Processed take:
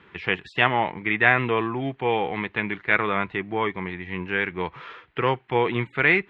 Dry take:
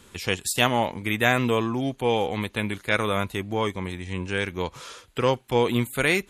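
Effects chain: speaker cabinet 100–2700 Hz, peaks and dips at 100 Hz -9 dB, 240 Hz -9 dB, 550 Hz -9 dB, 1900 Hz +5 dB; gain +3 dB

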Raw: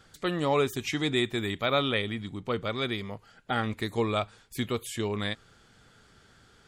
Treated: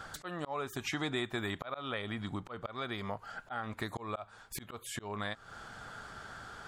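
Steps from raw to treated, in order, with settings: band shelf 990 Hz +9.5 dB; auto swell 0.607 s; compressor 3:1, threshold -43 dBFS, peak gain reduction 15.5 dB; gain +6 dB

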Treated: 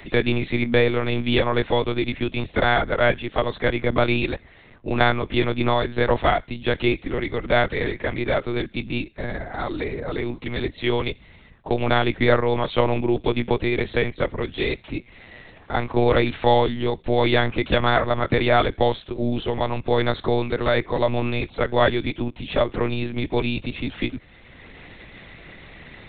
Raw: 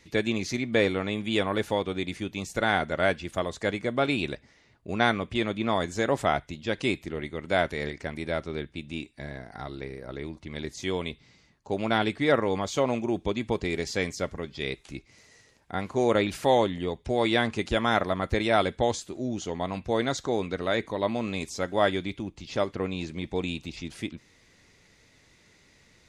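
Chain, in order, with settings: monotone LPC vocoder at 8 kHz 120 Hz; three-band squash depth 40%; gain +6.5 dB

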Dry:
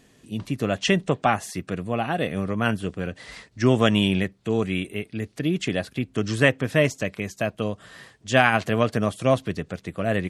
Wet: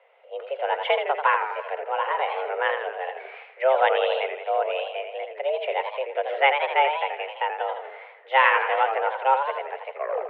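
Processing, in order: tape stop at the end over 0.39 s; mistuned SSB +270 Hz 220–2500 Hz; warbling echo 83 ms, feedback 60%, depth 161 cents, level -7 dB

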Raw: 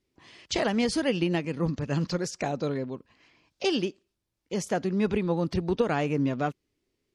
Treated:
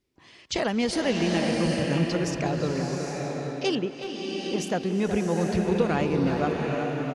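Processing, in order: 3.75–4.58 running mean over 9 samples; speakerphone echo 0.37 s, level -8 dB; bloom reverb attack 0.81 s, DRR 1 dB

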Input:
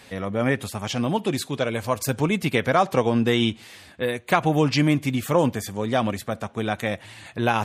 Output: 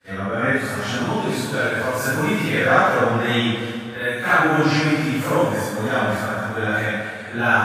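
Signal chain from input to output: phase scrambler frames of 0.2 s; expander -39 dBFS; bell 1500 Hz +13 dB 0.46 oct; plate-style reverb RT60 2.3 s, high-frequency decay 0.75×, DRR 3 dB

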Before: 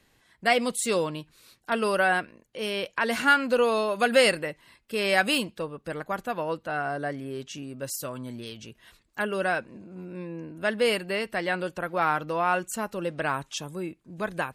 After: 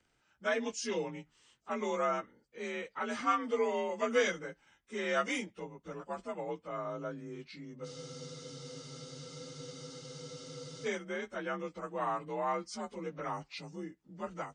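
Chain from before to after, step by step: inharmonic rescaling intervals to 89%; spectral freeze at 7.88, 2.97 s; gain -8 dB

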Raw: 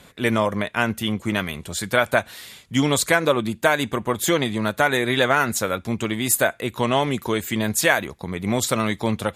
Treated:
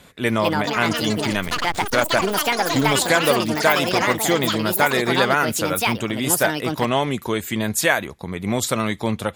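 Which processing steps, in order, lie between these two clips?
1.48–2.94 backlash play -18.5 dBFS; echoes that change speed 0.276 s, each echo +6 st, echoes 3

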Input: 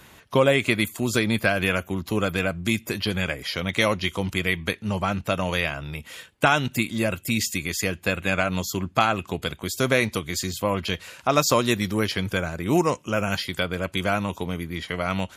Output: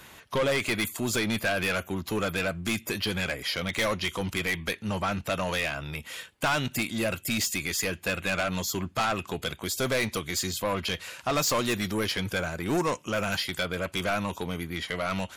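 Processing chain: low shelf 410 Hz -5 dB; soft clip -23 dBFS, distortion -7 dB; gain +1.5 dB

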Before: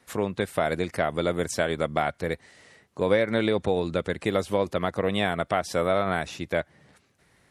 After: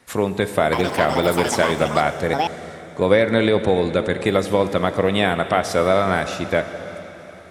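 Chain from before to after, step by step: plate-style reverb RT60 4.1 s, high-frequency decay 0.95×, pre-delay 0 ms, DRR 9 dB; 0.61–3.23 echoes that change speed 0.114 s, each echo +7 st, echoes 2, each echo -6 dB; gain +6.5 dB

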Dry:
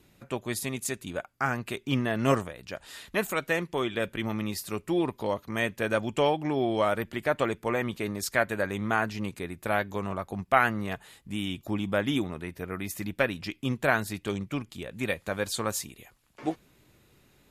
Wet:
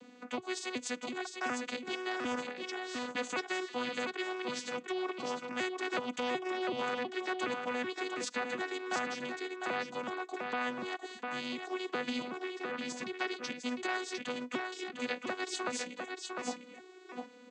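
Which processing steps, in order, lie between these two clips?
arpeggiated vocoder bare fifth, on B3, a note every 0.373 s; low shelf 220 Hz -8.5 dB; limiter -21.5 dBFS, peak gain reduction 7 dB; echo 0.703 s -8.5 dB; spectral compressor 2:1

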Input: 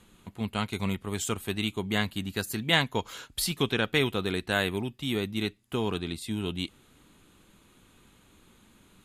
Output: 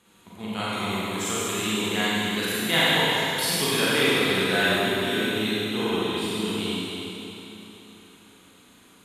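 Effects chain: HPF 280 Hz 6 dB/oct; Schroeder reverb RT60 3.4 s, combs from 33 ms, DRR -9.5 dB; gain -2.5 dB

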